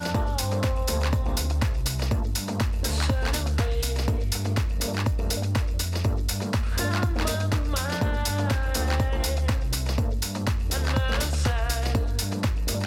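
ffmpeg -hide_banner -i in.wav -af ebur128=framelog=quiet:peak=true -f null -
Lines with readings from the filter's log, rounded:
Integrated loudness:
  I:         -26.1 LUFS
  Threshold: -36.1 LUFS
Loudness range:
  LRA:         0.6 LU
  Threshold: -46.1 LUFS
  LRA low:   -26.4 LUFS
  LRA high:  -25.7 LUFS
True peak:
  Peak:      -10.7 dBFS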